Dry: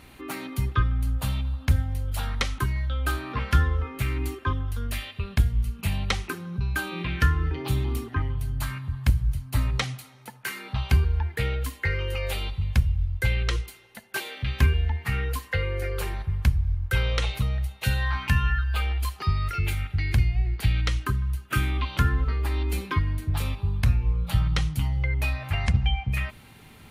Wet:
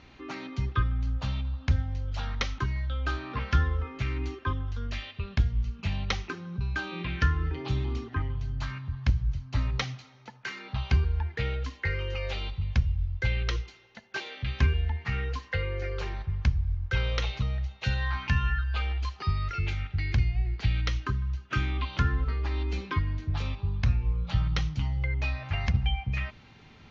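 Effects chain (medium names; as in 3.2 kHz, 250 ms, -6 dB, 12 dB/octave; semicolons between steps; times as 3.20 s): steep low-pass 6.4 kHz 72 dB/octave; trim -3.5 dB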